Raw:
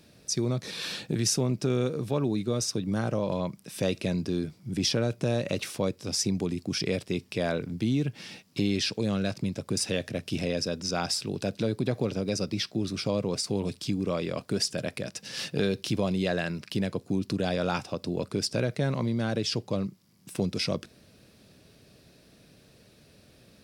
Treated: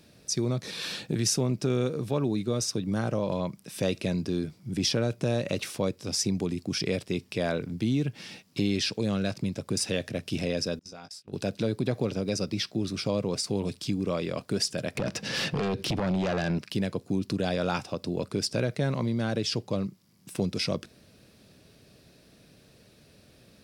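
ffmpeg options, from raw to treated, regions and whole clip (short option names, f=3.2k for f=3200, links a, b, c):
-filter_complex "[0:a]asettb=1/sr,asplit=3[a][b][c];[a]atrim=end=10.794[d];[b]atrim=start=10.79:end=11.33,asetpts=PTS-STARTPTS,afade=t=in:d=0.004:c=qsin,afade=t=out:st=0.536:d=0.004:c=qsin,agate=range=-32dB:threshold=-31dB:ratio=16:release=100:detection=peak,acompressor=threshold=-41dB:ratio=8:attack=3.2:release=140:knee=1:detection=peak,asplit=2[e][f];[f]adelay=19,volume=-7dB[g];[e][g]amix=inputs=2:normalize=0,atrim=end_sample=23814[h];[c]atrim=start=11.326[i];[d][h]acrossfade=d=0.004:c1=hsin:c2=qsin[j];[j][i]acrossfade=d=0.004:c1=qsin:c2=hsin,asettb=1/sr,asplit=3[k][l][m];[k]atrim=end=14.954[n];[l]atrim=start=14.95:end=16.59,asetpts=PTS-STARTPTS,afade=t=in:d=0.004:c=qsin,afade=t=out:st=1.636:d=0.004:c=qsin,aemphasis=mode=reproduction:type=75kf,acompressor=threshold=-36dB:ratio=2.5:attack=3.2:release=140:knee=1:detection=peak,aeval=exprs='0.0708*sin(PI/2*2.82*val(0)/0.0708)':c=same[o];[m]atrim=start=16.586[p];[n][o]acrossfade=d=0.004:c1=hsin:c2=qsin[q];[q][p]acrossfade=d=0.004:c1=qsin:c2=hsin"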